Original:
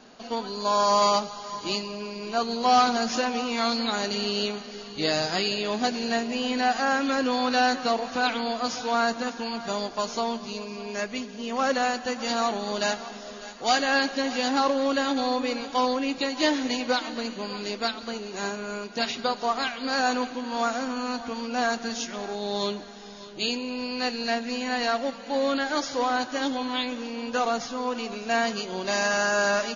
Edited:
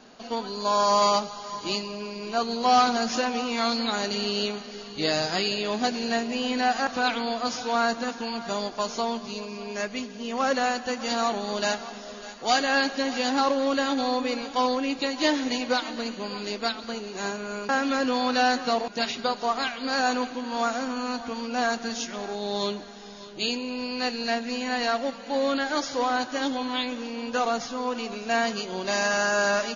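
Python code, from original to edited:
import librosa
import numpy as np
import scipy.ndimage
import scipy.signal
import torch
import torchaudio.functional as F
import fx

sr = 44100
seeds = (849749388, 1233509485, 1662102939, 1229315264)

y = fx.edit(x, sr, fx.move(start_s=6.87, length_s=1.19, to_s=18.88), tone=tone)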